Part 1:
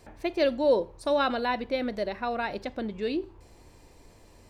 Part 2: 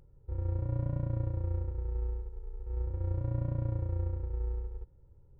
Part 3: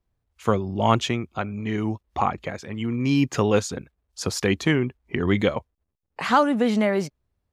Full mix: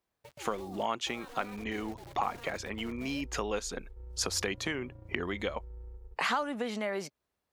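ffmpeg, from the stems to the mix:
-filter_complex "[0:a]aeval=exprs='val(0)*sin(2*PI*230*n/s)':c=same,acrusher=bits=5:mix=0:aa=0.000001,agate=range=-13dB:threshold=-38dB:ratio=16:detection=peak,volume=-19dB[a];[1:a]asoftclip=type=tanh:threshold=-24dB,adelay=1300,volume=-20dB[b];[2:a]acompressor=threshold=-28dB:ratio=6,highpass=f=560:p=1,volume=2dB[c];[a][b]amix=inputs=2:normalize=0,dynaudnorm=f=190:g=7:m=12.5dB,alimiter=level_in=15.5dB:limit=-24dB:level=0:latency=1:release=57,volume=-15.5dB,volume=0dB[d];[c][d]amix=inputs=2:normalize=0,equalizer=f=110:t=o:w=0.31:g=-9"

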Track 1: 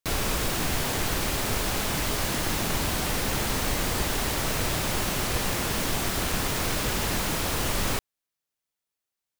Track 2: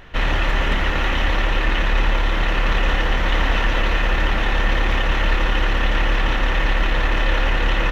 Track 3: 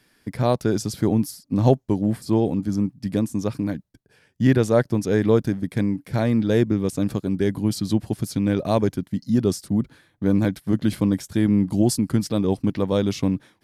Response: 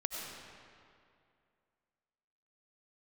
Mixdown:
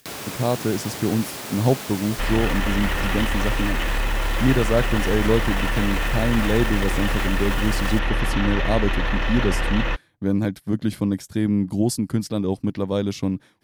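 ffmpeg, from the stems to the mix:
-filter_complex "[0:a]highpass=150,volume=-4.5dB[a];[1:a]adelay=2050,volume=-0.5dB[b];[2:a]volume=-2dB[c];[a][b]amix=inputs=2:normalize=0,acompressor=mode=upward:threshold=-34dB:ratio=2.5,alimiter=limit=-15dB:level=0:latency=1:release=13,volume=0dB[d];[c][d]amix=inputs=2:normalize=0"

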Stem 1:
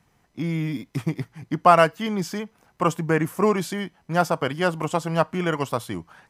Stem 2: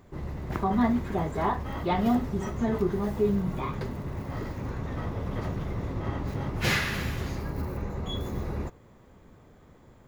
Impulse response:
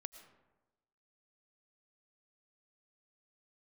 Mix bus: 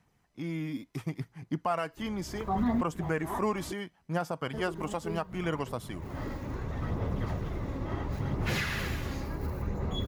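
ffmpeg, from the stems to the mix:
-filter_complex "[0:a]volume=-8.5dB,asplit=2[a][b];[1:a]adelay=1850,volume=-2.5dB,asplit=3[c][d][e];[c]atrim=end=3.72,asetpts=PTS-STARTPTS,afade=t=out:st=3.716:d=0.004:c=hsin[f];[d]atrim=start=3.72:end=4.53,asetpts=PTS-STARTPTS,volume=0[g];[e]atrim=start=4.53,asetpts=PTS-STARTPTS,afade=t=in:d=0.004:c=hsin[h];[f][g][h]concat=n=3:v=0:a=1[i];[b]apad=whole_len=525704[j];[i][j]sidechaincompress=threshold=-42dB:ratio=4:attack=5.1:release=180[k];[a][k]amix=inputs=2:normalize=0,aphaser=in_gain=1:out_gain=1:delay=3.7:decay=0.31:speed=0.71:type=sinusoidal,alimiter=limit=-20dB:level=0:latency=1:release=148"

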